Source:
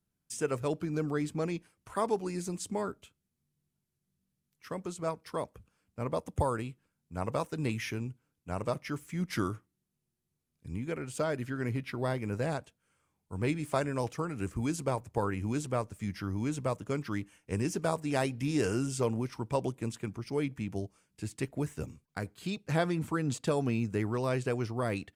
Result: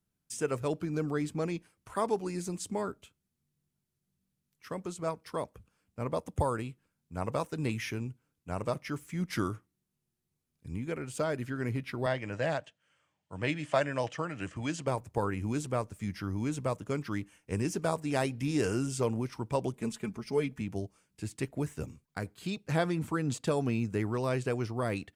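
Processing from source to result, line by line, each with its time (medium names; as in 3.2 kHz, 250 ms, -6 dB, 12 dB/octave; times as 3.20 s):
12.06–14.87 s: cabinet simulation 120–7700 Hz, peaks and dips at 220 Hz -7 dB, 400 Hz -7 dB, 610 Hz +7 dB, 1.8 kHz +8 dB, 3 kHz +10 dB
19.73–20.61 s: comb 4.7 ms, depth 62%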